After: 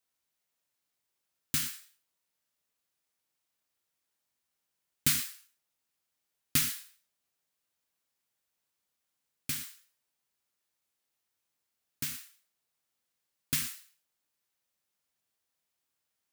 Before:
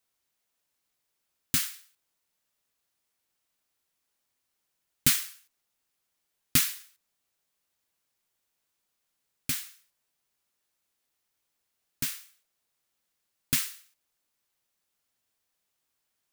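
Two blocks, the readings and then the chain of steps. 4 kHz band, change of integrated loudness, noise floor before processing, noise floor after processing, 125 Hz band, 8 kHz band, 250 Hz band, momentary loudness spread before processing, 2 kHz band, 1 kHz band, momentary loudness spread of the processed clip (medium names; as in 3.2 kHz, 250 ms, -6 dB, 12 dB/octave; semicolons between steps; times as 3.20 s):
-3.5 dB, -4.0 dB, -81 dBFS, -84 dBFS, -3.0 dB, -3.5 dB, -4.0 dB, 17 LU, -3.5 dB, -3.5 dB, 16 LU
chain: high-pass 47 Hz; gated-style reverb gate 140 ms flat, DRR 7 dB; trim -4.5 dB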